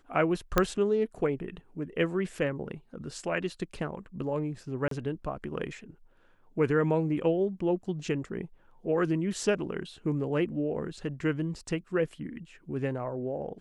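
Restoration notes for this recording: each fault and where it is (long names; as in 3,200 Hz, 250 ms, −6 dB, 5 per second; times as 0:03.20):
0:00.58: click −8 dBFS
0:04.88–0:04.91: drop-out 33 ms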